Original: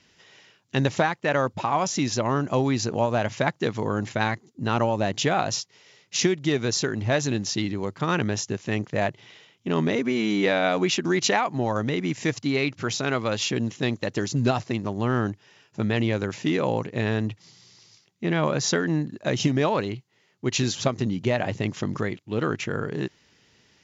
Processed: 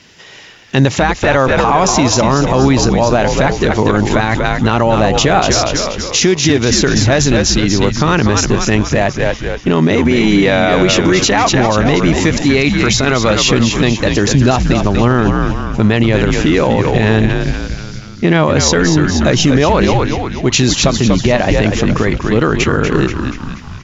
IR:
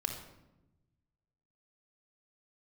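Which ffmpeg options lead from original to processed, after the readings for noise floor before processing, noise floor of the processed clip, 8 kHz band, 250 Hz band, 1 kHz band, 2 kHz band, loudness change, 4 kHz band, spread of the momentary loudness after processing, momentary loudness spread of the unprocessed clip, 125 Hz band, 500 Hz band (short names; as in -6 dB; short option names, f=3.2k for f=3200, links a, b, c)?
-64 dBFS, -30 dBFS, n/a, +13.5 dB, +12.5 dB, +13.0 dB, +13.0 dB, +14.0 dB, 5 LU, 7 LU, +14.0 dB, +12.5 dB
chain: -filter_complex "[0:a]asplit=2[a][b];[b]asplit=6[c][d][e][f][g][h];[c]adelay=240,afreqshift=-79,volume=-7dB[i];[d]adelay=480,afreqshift=-158,volume=-12.5dB[j];[e]adelay=720,afreqshift=-237,volume=-18dB[k];[f]adelay=960,afreqshift=-316,volume=-23.5dB[l];[g]adelay=1200,afreqshift=-395,volume=-29.1dB[m];[h]adelay=1440,afreqshift=-474,volume=-34.6dB[n];[i][j][k][l][m][n]amix=inputs=6:normalize=0[o];[a][o]amix=inputs=2:normalize=0,alimiter=level_in=17dB:limit=-1dB:release=50:level=0:latency=1,volume=-1dB"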